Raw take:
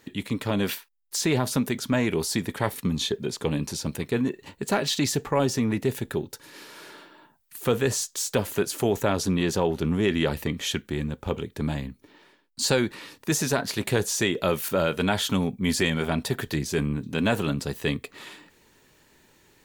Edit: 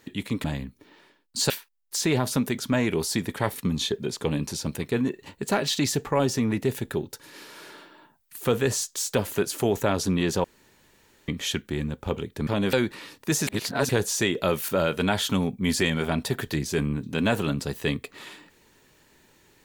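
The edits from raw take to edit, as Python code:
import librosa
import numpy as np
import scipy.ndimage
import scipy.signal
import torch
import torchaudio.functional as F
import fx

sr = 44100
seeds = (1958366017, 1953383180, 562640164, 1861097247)

y = fx.edit(x, sr, fx.swap(start_s=0.44, length_s=0.26, other_s=11.67, other_length_s=1.06),
    fx.room_tone_fill(start_s=9.64, length_s=0.84),
    fx.reverse_span(start_s=13.47, length_s=0.42), tone=tone)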